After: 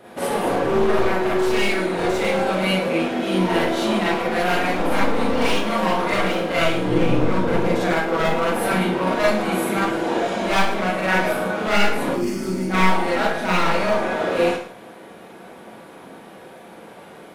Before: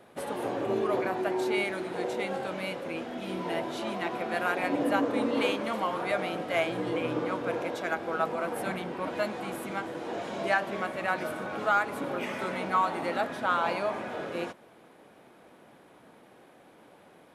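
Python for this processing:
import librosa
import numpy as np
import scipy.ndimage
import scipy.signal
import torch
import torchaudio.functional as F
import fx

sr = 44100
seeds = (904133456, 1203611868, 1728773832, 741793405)

p1 = np.minimum(x, 2.0 * 10.0 ** (-28.0 / 20.0) - x)
p2 = fx.low_shelf(p1, sr, hz=270.0, db=11.5, at=(6.85, 7.88))
p3 = fx.spec_box(p2, sr, start_s=12.1, length_s=0.6, low_hz=420.0, high_hz=4300.0, gain_db=-16)
p4 = fx.rider(p3, sr, range_db=3, speed_s=0.5)
p5 = p4 + fx.echo_single(p4, sr, ms=111, db=-15.5, dry=0)
p6 = fx.rev_schroeder(p5, sr, rt60_s=0.4, comb_ms=33, drr_db=-6.0)
y = p6 * librosa.db_to_amplitude(4.0)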